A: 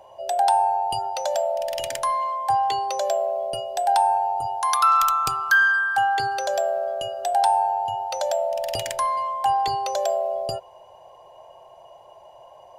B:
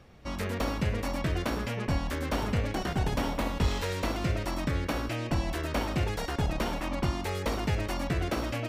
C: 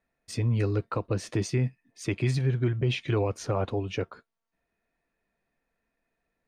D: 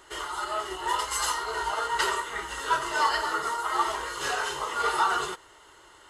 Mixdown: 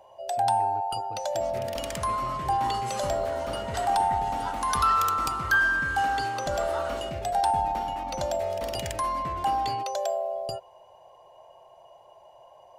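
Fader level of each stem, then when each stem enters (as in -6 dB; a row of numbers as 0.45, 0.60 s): -5.0, -9.0, -17.0, -12.0 dB; 0.00, 1.15, 0.00, 1.75 s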